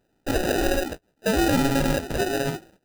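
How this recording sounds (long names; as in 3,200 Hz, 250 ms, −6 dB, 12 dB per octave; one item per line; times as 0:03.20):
aliases and images of a low sample rate 1,100 Hz, jitter 0%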